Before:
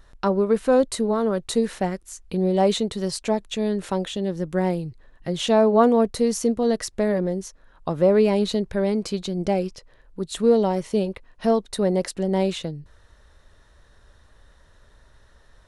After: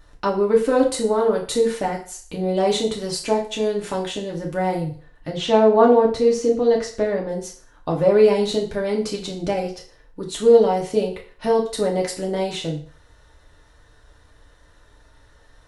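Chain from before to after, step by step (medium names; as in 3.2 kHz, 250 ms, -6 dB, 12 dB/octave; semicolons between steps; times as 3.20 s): 5.29–7.29 s: distance through air 92 m; FDN reverb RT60 0.45 s, low-frequency decay 0.75×, high-frequency decay 0.95×, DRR -2 dB; trim -1 dB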